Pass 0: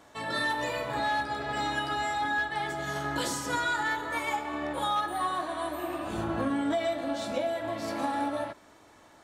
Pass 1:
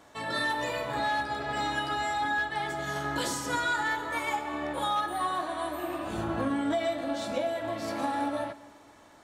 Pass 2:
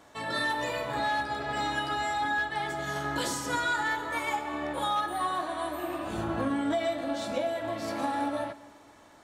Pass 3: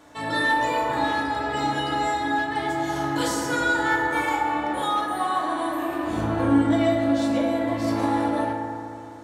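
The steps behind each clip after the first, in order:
Schroeder reverb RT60 2 s, combs from 31 ms, DRR 17.5 dB
nothing audible
FDN reverb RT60 2.5 s, low-frequency decay 1.25×, high-frequency decay 0.25×, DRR -1.5 dB; gain +2 dB

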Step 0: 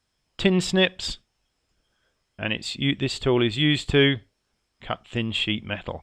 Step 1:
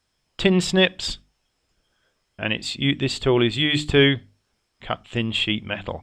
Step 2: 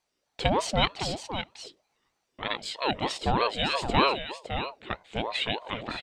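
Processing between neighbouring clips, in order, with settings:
notches 50/100/150/200/250/300 Hz; gain +2.5 dB
echo 0.56 s -9 dB; ring modulator with a swept carrier 580 Hz, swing 45%, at 3.2 Hz; gain -4 dB

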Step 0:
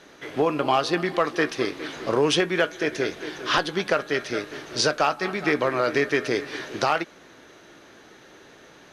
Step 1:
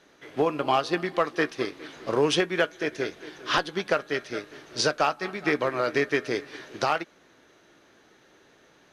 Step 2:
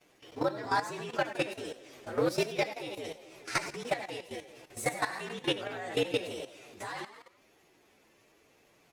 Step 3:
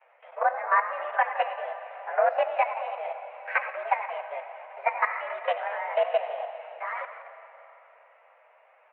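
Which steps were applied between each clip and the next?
upward expander 1.5:1, over -33 dBFS; gain -1 dB
inharmonic rescaling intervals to 119%; frequency-shifting echo 84 ms, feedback 50%, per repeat +55 Hz, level -10 dB; level quantiser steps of 13 dB
mistuned SSB +190 Hz 360–2100 Hz; digital reverb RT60 3.7 s, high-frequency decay 0.85×, pre-delay 45 ms, DRR 11 dB; gain +7 dB

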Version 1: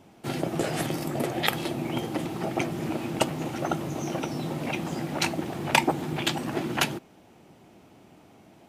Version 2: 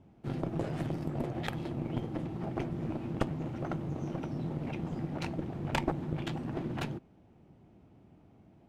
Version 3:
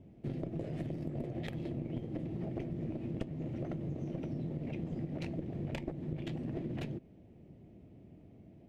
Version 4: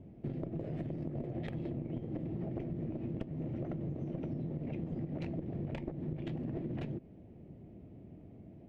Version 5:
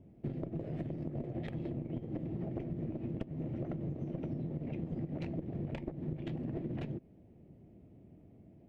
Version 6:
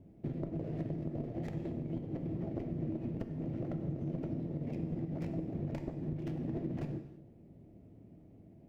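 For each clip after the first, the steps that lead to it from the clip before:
RIAA curve playback; added harmonics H 7 -24 dB, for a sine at -4 dBFS; one-sided clip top -27.5 dBFS; gain -7 dB
high shelf 2600 Hz -8.5 dB; compressor 4:1, threshold -39 dBFS, peak gain reduction 13 dB; band shelf 1100 Hz -11 dB 1.2 oct; gain +3.5 dB
LPF 1800 Hz 6 dB/oct; compressor 3:1, threshold -39 dBFS, peak gain reduction 7 dB; gain +3.5 dB
upward expander 1.5:1, over -48 dBFS; gain +1.5 dB
median filter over 15 samples; non-linear reverb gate 0.36 s falling, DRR 6.5 dB

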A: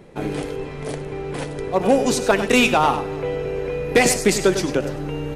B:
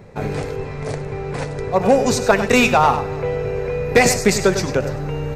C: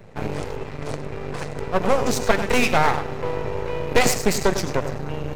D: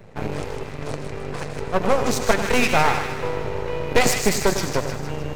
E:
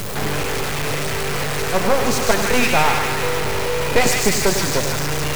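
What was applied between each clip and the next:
thirty-one-band EQ 100 Hz +12 dB, 315 Hz -12 dB, 3150 Hz -9 dB, 10000 Hz -12 dB; gain +3.5 dB
half-wave rectifier
thin delay 0.155 s, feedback 50%, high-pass 1500 Hz, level -5.5 dB
zero-crossing step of -18.5 dBFS

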